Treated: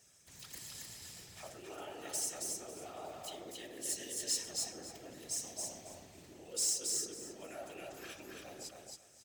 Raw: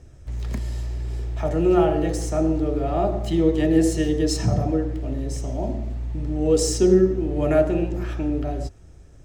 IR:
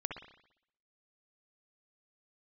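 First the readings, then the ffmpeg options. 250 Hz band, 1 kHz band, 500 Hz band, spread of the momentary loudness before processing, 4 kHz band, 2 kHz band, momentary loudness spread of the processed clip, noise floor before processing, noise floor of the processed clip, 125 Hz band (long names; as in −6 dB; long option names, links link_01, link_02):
−31.5 dB, −20.0 dB, −27.0 dB, 12 LU, −6.0 dB, −13.5 dB, 16 LU, −46 dBFS, −62 dBFS, −35.0 dB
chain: -af "afftfilt=real='hypot(re,im)*cos(2*PI*random(0))':imag='hypot(re,im)*sin(2*PI*random(1))':win_size=512:overlap=0.75,areverse,acompressor=threshold=-31dB:ratio=16,areverse,aderivative,asoftclip=type=tanh:threshold=-36dB,aecho=1:1:273|546|819:0.708|0.142|0.0283,volume=10dB"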